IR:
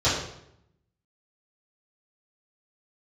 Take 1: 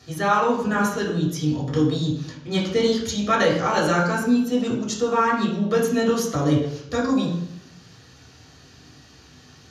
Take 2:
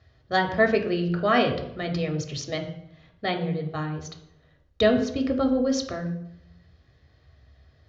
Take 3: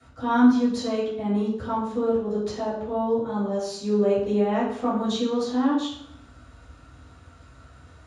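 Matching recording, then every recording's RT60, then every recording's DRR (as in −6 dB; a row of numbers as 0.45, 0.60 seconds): 3; 0.75, 0.75, 0.75 seconds; −4.0, 3.5, −12.5 decibels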